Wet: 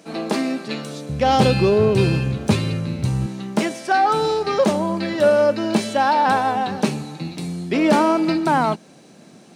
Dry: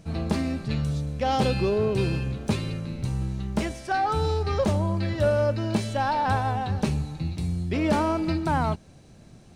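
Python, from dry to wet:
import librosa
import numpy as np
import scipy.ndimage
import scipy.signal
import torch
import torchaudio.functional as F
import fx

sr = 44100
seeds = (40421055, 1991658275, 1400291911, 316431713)

y = fx.highpass(x, sr, hz=fx.steps((0.0, 250.0), (1.09, 82.0), (3.26, 190.0)), slope=24)
y = F.gain(torch.from_numpy(y), 8.0).numpy()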